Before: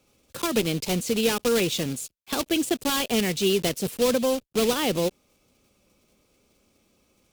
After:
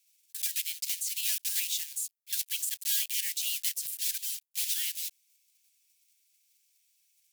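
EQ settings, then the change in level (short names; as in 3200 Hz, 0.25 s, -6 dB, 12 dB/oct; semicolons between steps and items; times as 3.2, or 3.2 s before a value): steep high-pass 1600 Hz 96 dB/oct; differentiator; 0.0 dB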